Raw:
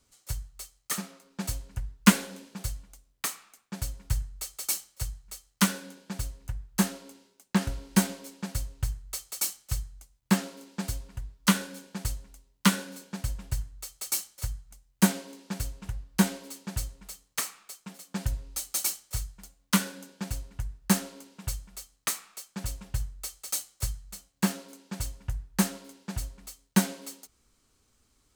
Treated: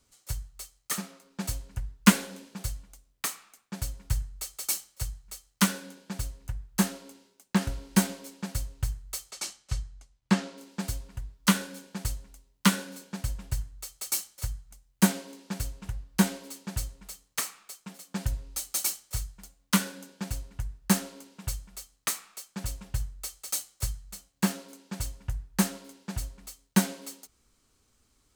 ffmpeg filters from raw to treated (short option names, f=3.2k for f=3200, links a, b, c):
-filter_complex "[0:a]asettb=1/sr,asplit=3[a][b][c];[a]atrim=end=9.314[d];[b]atrim=start=9.31:end=10.58,asetpts=PTS-STARTPTS,afade=t=in:d=0.004:c=qsin,afade=t=out:st=1.266:d=0.004:c=qsin,lowpass=6.1k[e];[c]atrim=start=10.576[f];[d][e]acrossfade=d=0.004:c1=hsin:c2=qsin[g];[g][f]acrossfade=d=0.004:c1=qsin:c2=hsin"